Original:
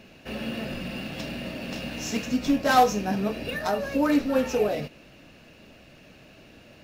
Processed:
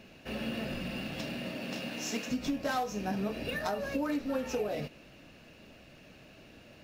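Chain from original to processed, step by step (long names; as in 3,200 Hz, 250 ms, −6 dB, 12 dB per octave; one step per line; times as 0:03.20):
0:01.20–0:02.29: high-pass filter 84 Hz → 250 Hz 12 dB per octave
downward compressor 16 to 1, threshold −25 dBFS, peak gain reduction 12.5 dB
level −3.5 dB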